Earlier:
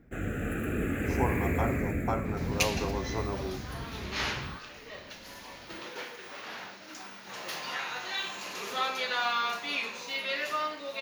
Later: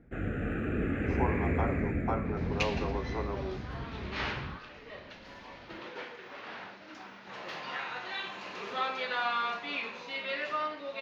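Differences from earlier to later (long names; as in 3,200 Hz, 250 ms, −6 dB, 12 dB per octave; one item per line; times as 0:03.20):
speech: add Chebyshev high-pass filter 310 Hz, order 6
master: add high-frequency loss of the air 230 metres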